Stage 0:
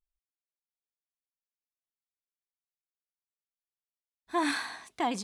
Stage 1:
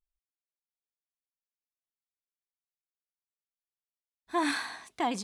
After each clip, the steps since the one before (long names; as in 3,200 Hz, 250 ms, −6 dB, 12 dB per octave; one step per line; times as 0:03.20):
no processing that can be heard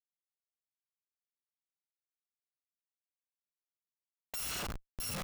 samples in bit-reversed order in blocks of 128 samples
comparator with hysteresis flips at −34.5 dBFS
level +1 dB